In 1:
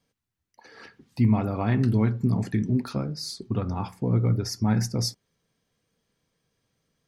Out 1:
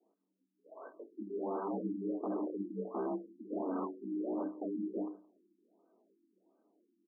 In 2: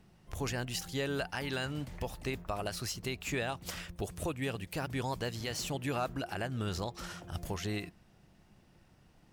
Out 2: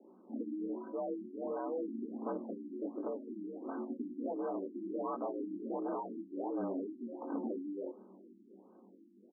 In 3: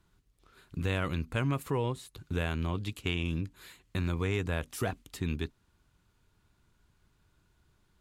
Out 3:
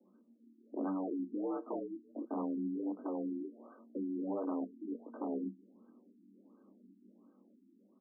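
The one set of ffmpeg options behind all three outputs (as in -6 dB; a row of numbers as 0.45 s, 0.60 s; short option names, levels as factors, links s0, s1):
-filter_complex "[0:a]highshelf=f=3600:g=-11,dynaudnorm=f=390:g=7:m=1.58,alimiter=limit=0.15:level=0:latency=1:release=99,acompressor=threshold=0.02:ratio=3,flanger=delay=19.5:depth=6.8:speed=0.98,aresample=16000,aeval=exprs='0.015*(abs(mod(val(0)/0.015+3,4)-2)-1)':c=same,aresample=44100,afreqshift=190,asuperstop=centerf=1400:order=4:qfactor=7.4,asplit=2[s0][s1];[s1]aecho=0:1:171:0.0631[s2];[s0][s2]amix=inputs=2:normalize=0,afftfilt=real='re*lt(b*sr/1024,350*pow(1600/350,0.5+0.5*sin(2*PI*1.4*pts/sr)))':imag='im*lt(b*sr/1024,350*pow(1600/350,0.5+0.5*sin(2*PI*1.4*pts/sr)))':win_size=1024:overlap=0.75,volume=1.88"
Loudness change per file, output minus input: -13.0 LU, -3.5 LU, -5.5 LU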